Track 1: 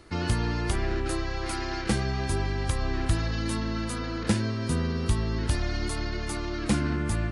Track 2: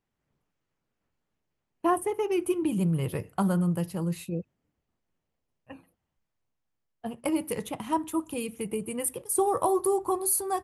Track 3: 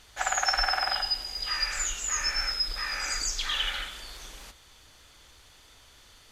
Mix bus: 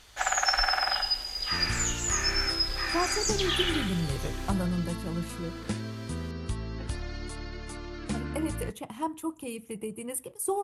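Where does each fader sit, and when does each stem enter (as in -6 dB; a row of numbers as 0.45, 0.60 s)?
-8.0, -4.5, +0.5 dB; 1.40, 1.10, 0.00 s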